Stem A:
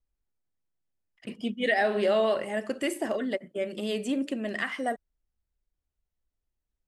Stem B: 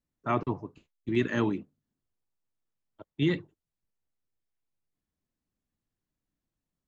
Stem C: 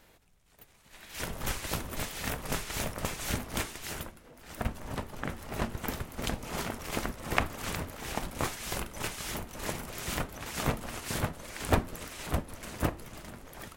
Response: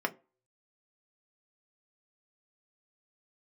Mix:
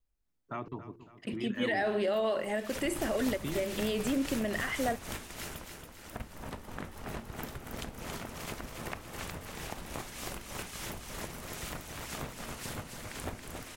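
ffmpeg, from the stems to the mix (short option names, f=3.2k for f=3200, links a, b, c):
-filter_complex "[0:a]alimiter=limit=-23.5dB:level=0:latency=1,volume=0.5dB[a];[1:a]bandreject=f=114.1:t=h:w=4,bandreject=f=228.2:t=h:w=4,bandreject=f=342.3:t=h:w=4,bandreject=f=456.4:t=h:w=4,acompressor=threshold=-32dB:ratio=4,adelay=250,volume=-4dB,asplit=2[b][c];[c]volume=-14dB[d];[2:a]acompressor=threshold=-33dB:ratio=6,adelay=1550,volume=-3.5dB,asplit=2[e][f];[f]volume=-6dB[g];[d][g]amix=inputs=2:normalize=0,aecho=0:1:277|554|831|1108|1385|1662:1|0.45|0.202|0.0911|0.041|0.0185[h];[a][b][e][h]amix=inputs=4:normalize=0"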